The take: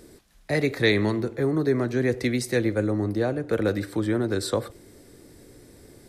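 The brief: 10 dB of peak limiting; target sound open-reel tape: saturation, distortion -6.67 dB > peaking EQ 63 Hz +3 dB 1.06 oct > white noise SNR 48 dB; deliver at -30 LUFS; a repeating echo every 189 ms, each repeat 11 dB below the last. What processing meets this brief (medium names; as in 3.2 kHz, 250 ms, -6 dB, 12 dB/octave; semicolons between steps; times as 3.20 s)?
peak limiter -16.5 dBFS; feedback delay 189 ms, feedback 28%, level -11 dB; saturation -30 dBFS; peaking EQ 63 Hz +3 dB 1.06 oct; white noise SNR 48 dB; trim +3.5 dB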